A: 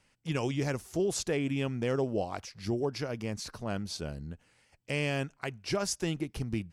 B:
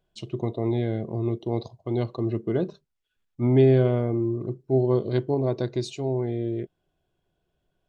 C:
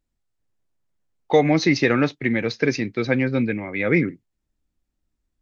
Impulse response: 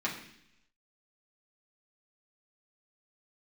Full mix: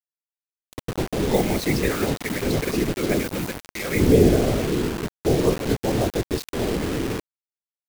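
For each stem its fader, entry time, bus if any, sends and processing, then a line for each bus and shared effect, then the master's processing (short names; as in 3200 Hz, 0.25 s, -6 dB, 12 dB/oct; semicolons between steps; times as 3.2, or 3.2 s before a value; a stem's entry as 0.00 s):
-17.5 dB, 0.00 s, no send, cycle switcher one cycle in 3, muted; limiter -26 dBFS, peak gain reduction 6 dB
+2.0 dB, 0.55 s, no send, dry
-7.0 dB, 0.00 s, no send, modulation noise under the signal 19 dB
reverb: off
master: whisperiser; bit-crush 5-bit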